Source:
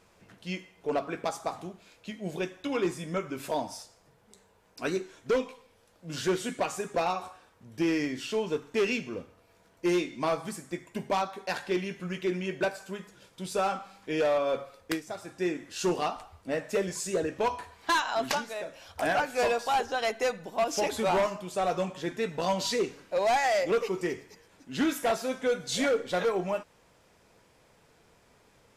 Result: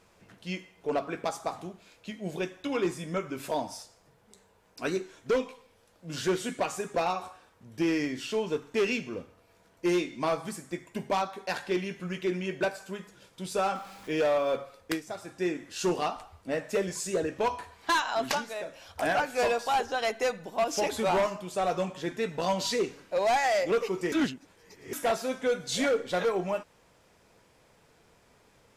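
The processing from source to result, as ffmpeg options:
-filter_complex "[0:a]asettb=1/sr,asplit=3[a][b][c];[a]atrim=end=13.754[d];[b]atrim=start=13.75:end=14.56,asetpts=PTS-STARTPTS,afade=t=in:d=0.004:c=qsin,afade=t=out:st=0.806:d=0.004:c=qsin,aeval=exprs='val(0)+0.5*0.00422*sgn(val(0))':c=same[e];[c]atrim=start=14.556[f];[d][e]acrossfade=d=0.004:c1=hsin:c2=qsin[g];[g][f]acrossfade=d=0.004:c1=qsin:c2=hsin,asplit=3[h][i][j];[h]atrim=end=24.122[k];[i]atrim=start=24.118:end=24.932,asetpts=PTS-STARTPTS,areverse[l];[j]atrim=start=24.928[m];[k][l]acrossfade=d=0.004:c1=hsin:c2=hsin[n];[n][m]acrossfade=d=0.004:c1=hsin:c2=hsin"

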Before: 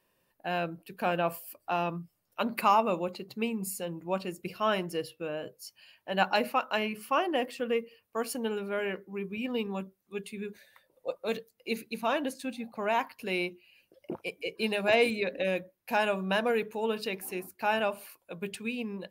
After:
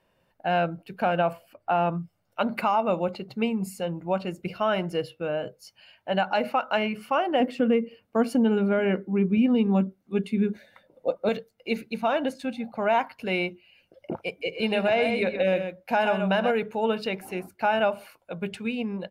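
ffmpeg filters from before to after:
-filter_complex "[0:a]asettb=1/sr,asplit=3[a][b][c];[a]atrim=end=1.334[d];[b]atrim=start=1.33:end=1.92,asetpts=PTS-STARTPTS,afade=t=in:d=0.004:c=qsin,afade=t=out:st=0.586:d=0.004:c=qsin,bass=f=250:g=0,treble=f=4k:g=-12[e];[c]atrim=start=1.916[f];[d][e]acrossfade=d=0.004:c1=hsin:c2=qsin[g];[g][f]acrossfade=d=0.004:c1=qsin:c2=hsin,asettb=1/sr,asplit=3[h][i][j];[h]atrim=end=7.404[k];[i]atrim=start=7.4:end=11.29,asetpts=PTS-STARTPTS,afade=t=in:d=0.004:c=qsin,afade=t=out:st=3.886:d=0.004:c=qsin,equalizer=f=250:w=1:g=11.5[l];[j]atrim=start=11.286[m];[k][l]acrossfade=d=0.004:c1=hsin:c2=qsin[n];[n][m]acrossfade=d=0.004:c1=qsin:c2=hsin,asplit=3[o][p][q];[o]afade=t=out:st=14.44:d=0.02[r];[p]aecho=1:1:71|126:0.106|0.398,afade=t=in:st=14.44:d=0.02,afade=t=out:st=16.5:d=0.02[s];[q]afade=t=in:st=16.5:d=0.02[t];[r][s][t]amix=inputs=3:normalize=0,aemphasis=mode=reproduction:type=75kf,aecho=1:1:1.4:0.34,alimiter=limit=-21dB:level=0:latency=1:release=155,volume=7dB"

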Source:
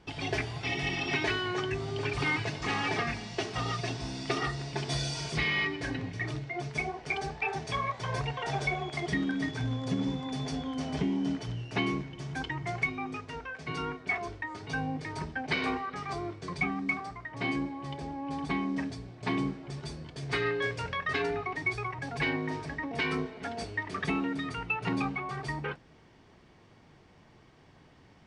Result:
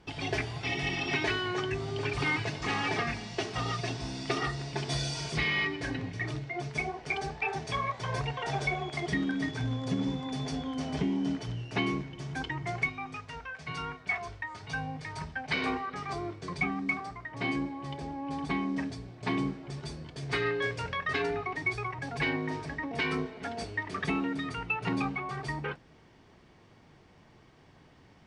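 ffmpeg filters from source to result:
-filter_complex "[0:a]asettb=1/sr,asplit=3[a][b][c];[a]atrim=end=12.884[d];[b]atrim=start=12.88:end=15.54,asetpts=PTS-STARTPTS,afade=t=in:d=0.004:c=qsin,afade=t=out:st=2.656:d=0.004:c=qsin,equalizer=f=330:t=o:w=1.1:g=-11[e];[c]atrim=start=15.536[f];[d][e]acrossfade=d=0.004:c1=hsin:c2=qsin[g];[g][f]acrossfade=d=0.004:c1=qsin:c2=hsin"

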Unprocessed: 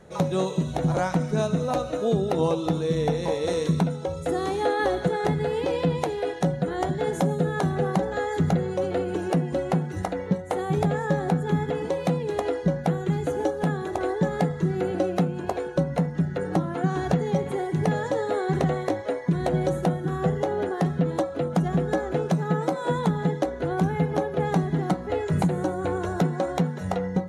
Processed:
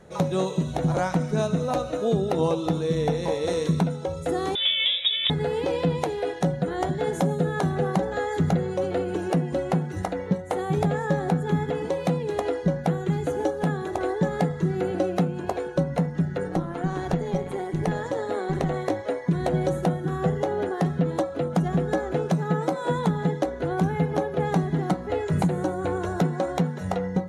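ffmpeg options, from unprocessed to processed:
-filter_complex "[0:a]asettb=1/sr,asplit=3[a][b][c];[a]atrim=end=4.554[d];[b]atrim=start=4.55:end=5.3,asetpts=PTS-STARTPTS,afade=t=in:d=0.004:c=qsin,afade=t=out:st=0.746:d=0.004:c=qsin,lowpass=f=3.3k:t=q:w=0.5098,lowpass=f=3.3k:t=q:w=0.6013,lowpass=f=3.3k:t=q:w=0.9,lowpass=f=3.3k:t=q:w=2.563,afreqshift=-3900[e];[c]atrim=start=5.296[f];[d][e]acrossfade=d=0.004:c1=hsin:c2=qsin[g];[g][f]acrossfade=d=0.004:c1=qsin:c2=hsin,asettb=1/sr,asplit=3[h][i][j];[h]atrim=end=16.484[k];[i]atrim=start=16.48:end=18.74,asetpts=PTS-STARTPTS,afade=t=in:d=0.004:c=qsin,afade=t=out:st=2.256:d=0.004:c=qsin,tremolo=f=180:d=0.519[l];[j]atrim=start=18.736[m];[k][l]acrossfade=d=0.004:c1=hsin:c2=qsin[n];[n][m]acrossfade=d=0.004:c1=qsin:c2=hsin"

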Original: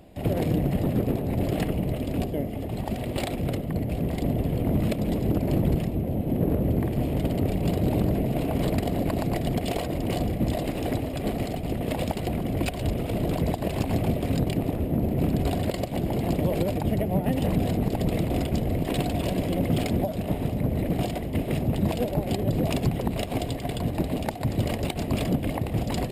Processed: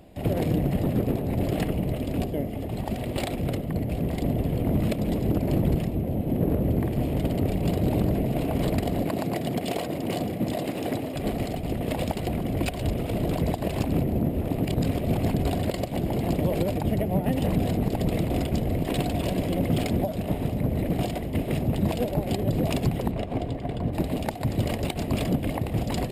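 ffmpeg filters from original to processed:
-filter_complex "[0:a]asettb=1/sr,asplit=3[a][b][c];[a]atrim=end=9.054[d];[b]atrim=start=9.05:end=11.16,asetpts=PTS-STARTPTS,afade=t=in:d=0.004:c=qsin,afade=t=out:st=2.106:d=0.004:c=qsin,highpass=140[e];[c]atrim=start=11.156[f];[d][e]acrossfade=d=0.004:c1=hsin:c2=qsin[g];[g][f]acrossfade=d=0.004:c1=qsin:c2=hsin,asplit=3[h][i][j];[h]afade=t=out:st=23.1:d=0.02[k];[i]lowpass=f=1.3k:p=1,afade=t=in:st=23.1:d=0.02,afade=t=out:st=23.92:d=0.02[l];[j]afade=t=in:st=23.92:d=0.02[m];[k][l][m]amix=inputs=3:normalize=0,asplit=3[n][o][p];[n]atrim=end=13.872[q];[o]atrim=start=13.868:end=15.342,asetpts=PTS-STARTPTS,areverse[r];[p]atrim=start=15.338[s];[q][r]acrossfade=d=0.004:c1=hsin:c2=hsin[t];[t][s]acrossfade=d=0.004:c1=hsin:c2=hsin"

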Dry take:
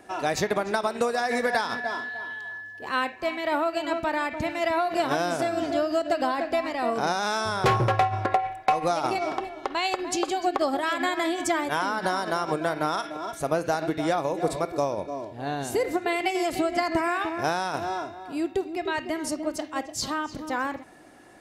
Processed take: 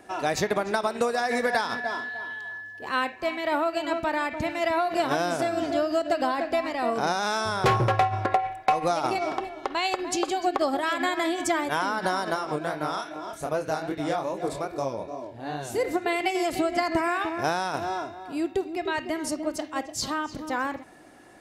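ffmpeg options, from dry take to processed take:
-filter_complex "[0:a]asplit=3[a][b][c];[a]afade=t=out:st=12.34:d=0.02[d];[b]flanger=delay=19.5:depth=7.6:speed=2.5,afade=t=in:st=12.34:d=0.02,afade=t=out:st=15.77:d=0.02[e];[c]afade=t=in:st=15.77:d=0.02[f];[d][e][f]amix=inputs=3:normalize=0"

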